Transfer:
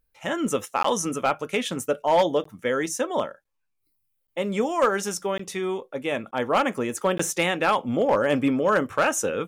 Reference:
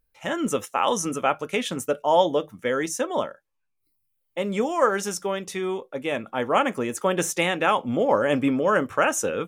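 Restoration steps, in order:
clipped peaks rebuilt −13 dBFS
repair the gap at 0:00.83/0:02.44/0:03.44/0:04.27/0:05.38/0:06.31/0:07.18, 14 ms

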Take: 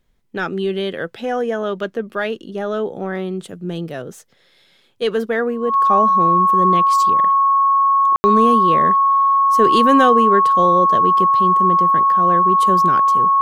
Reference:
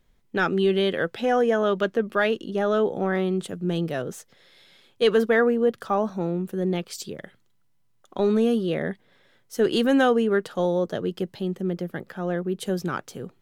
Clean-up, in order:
notch filter 1,100 Hz, Q 30
ambience match 0:08.16–0:08.24
level 0 dB, from 0:05.85 −4.5 dB

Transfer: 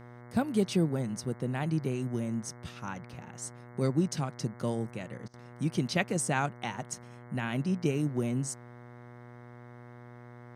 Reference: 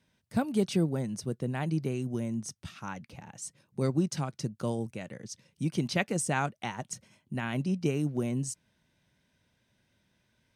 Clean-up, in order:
hum removal 121.1 Hz, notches 18
repair the gap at 0:05.28, 56 ms

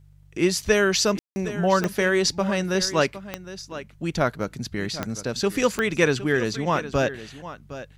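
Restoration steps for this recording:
click removal
hum removal 48.8 Hz, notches 3
ambience match 0:01.19–0:01.36
echo removal 762 ms −14 dB

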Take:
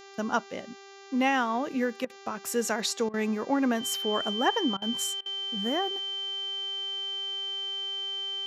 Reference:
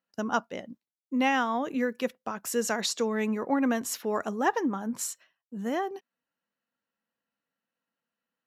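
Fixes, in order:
hum removal 394.2 Hz, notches 18
notch filter 3,100 Hz, Q 30
repair the gap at 0:02.05/0:03.09/0:04.77/0:05.21, 47 ms

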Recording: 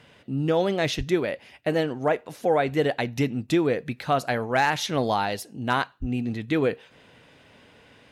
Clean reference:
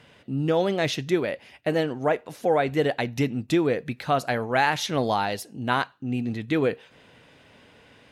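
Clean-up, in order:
clipped peaks rebuilt −11 dBFS
0:00.97–0:01.09: high-pass filter 140 Hz 24 dB per octave
0:06.00–0:06.12: high-pass filter 140 Hz 24 dB per octave

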